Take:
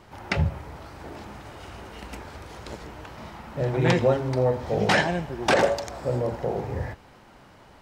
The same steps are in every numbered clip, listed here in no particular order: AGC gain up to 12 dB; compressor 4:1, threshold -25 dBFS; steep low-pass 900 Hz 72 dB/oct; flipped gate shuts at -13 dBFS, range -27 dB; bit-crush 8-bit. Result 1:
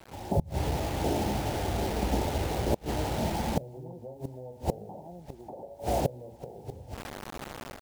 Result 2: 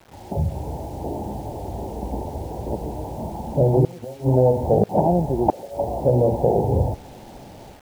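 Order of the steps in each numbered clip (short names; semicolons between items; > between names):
steep low-pass > bit-crush > compressor > AGC > flipped gate; steep low-pass > flipped gate > compressor > AGC > bit-crush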